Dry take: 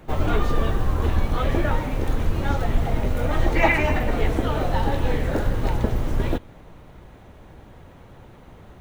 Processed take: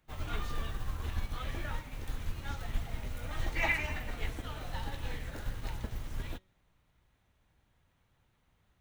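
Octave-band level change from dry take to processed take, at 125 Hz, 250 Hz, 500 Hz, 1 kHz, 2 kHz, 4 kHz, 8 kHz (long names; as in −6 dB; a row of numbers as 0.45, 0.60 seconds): −15.5, −20.0, −20.5, −16.5, −10.0, −8.5, −7.5 decibels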